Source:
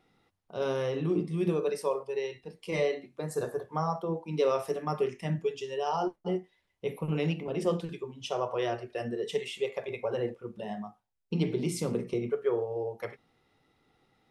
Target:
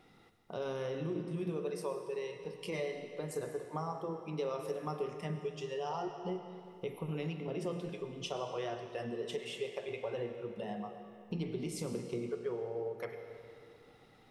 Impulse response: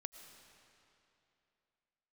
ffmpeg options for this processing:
-filter_complex "[0:a]acompressor=threshold=-49dB:ratio=2.5[link_01];[1:a]atrim=start_sample=2205,asetrate=48510,aresample=44100[link_02];[link_01][link_02]afir=irnorm=-1:irlink=0,volume=11.5dB"

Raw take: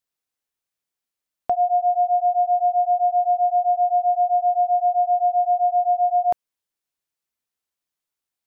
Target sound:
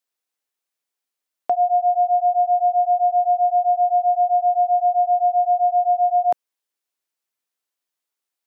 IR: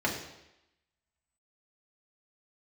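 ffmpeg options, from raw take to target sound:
-af "highpass=280,volume=1.5dB"

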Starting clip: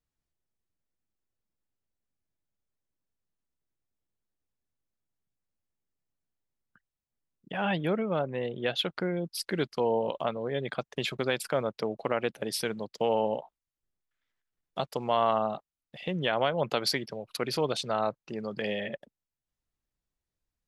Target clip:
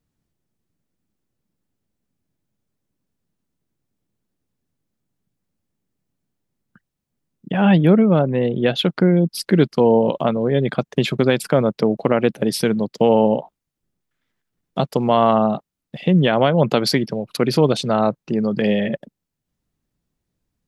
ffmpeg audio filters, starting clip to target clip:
ffmpeg -i in.wav -af "equalizer=frequency=190:width=0.56:gain=12,volume=7dB" out.wav

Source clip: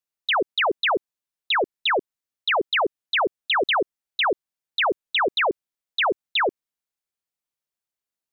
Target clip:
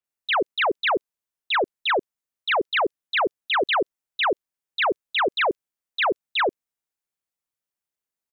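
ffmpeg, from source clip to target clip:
ffmpeg -i in.wav -filter_complex "[0:a]acrossover=split=3900[link_01][link_02];[link_02]adelay=40[link_03];[link_01][link_03]amix=inputs=2:normalize=0" out.wav

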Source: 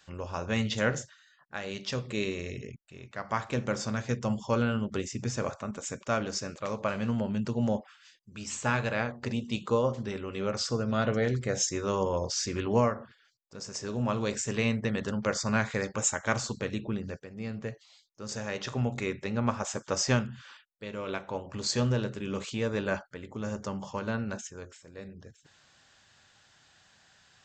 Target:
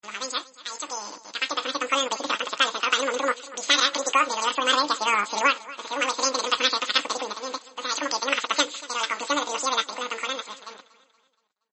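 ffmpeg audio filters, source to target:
ffmpeg -i in.wav -filter_complex "[0:a]asplit=2[link_01][link_02];[link_02]acompressor=threshold=-39dB:ratio=8,volume=0.5dB[link_03];[link_01][link_03]amix=inputs=2:normalize=0,highshelf=frequency=5500:gain=-9,dynaudnorm=framelen=250:gausssize=31:maxgain=11dB,highshelf=frequency=2500:gain=10,asetrate=103194,aresample=44100,acrusher=bits=5:mix=0:aa=0.5,highpass=frequency=1200:poles=1,bandreject=frequency=5600:width=7.9,aecho=1:1:236|472|708|944:0.112|0.0505|0.0227|0.0102" -ar 32000 -c:a libmp3lame -b:a 32k out.mp3

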